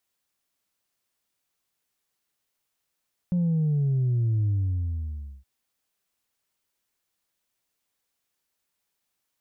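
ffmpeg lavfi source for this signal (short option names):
-f lavfi -i "aevalsrc='0.0891*clip((2.12-t)/0.97,0,1)*tanh(1.12*sin(2*PI*180*2.12/log(65/180)*(exp(log(65/180)*t/2.12)-1)))/tanh(1.12)':d=2.12:s=44100"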